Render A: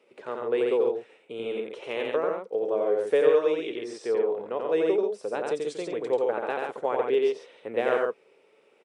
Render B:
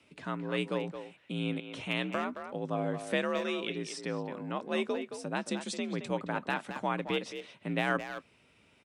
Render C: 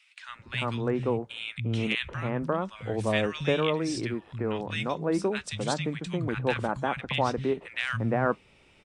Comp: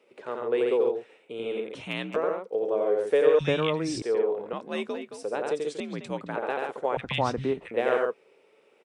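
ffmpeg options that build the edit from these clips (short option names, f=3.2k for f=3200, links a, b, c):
-filter_complex "[1:a]asplit=3[a][b][c];[2:a]asplit=2[d][e];[0:a]asplit=6[f][g][h][i][j][k];[f]atrim=end=1.752[l];[a]atrim=start=1.748:end=2.162[m];[g]atrim=start=2.158:end=3.392[n];[d]atrim=start=3.388:end=4.022[o];[h]atrim=start=4.018:end=4.532[p];[b]atrim=start=4.528:end=5.232[q];[i]atrim=start=5.228:end=5.802[r];[c]atrim=start=5.798:end=6.362[s];[j]atrim=start=6.358:end=6.972[t];[e]atrim=start=6.968:end=7.712[u];[k]atrim=start=7.708[v];[l][m]acrossfade=d=0.004:c1=hsin:c2=hsin[w];[w][n]acrossfade=d=0.004:c1=hsin:c2=hsin[x];[x][o]acrossfade=d=0.004:c1=hsin:c2=hsin[y];[y][p]acrossfade=d=0.004:c1=hsin:c2=hsin[z];[z][q]acrossfade=d=0.004:c1=hsin:c2=hsin[aa];[aa][r]acrossfade=d=0.004:c1=hsin:c2=hsin[ab];[ab][s]acrossfade=d=0.004:c1=hsin:c2=hsin[ac];[ac][t]acrossfade=d=0.004:c1=hsin:c2=hsin[ad];[ad][u]acrossfade=d=0.004:c1=hsin:c2=hsin[ae];[ae][v]acrossfade=d=0.004:c1=hsin:c2=hsin"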